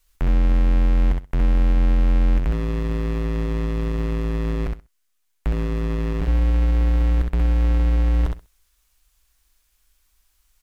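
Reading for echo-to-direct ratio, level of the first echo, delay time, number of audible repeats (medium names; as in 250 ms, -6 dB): -4.0 dB, -4.0 dB, 65 ms, 2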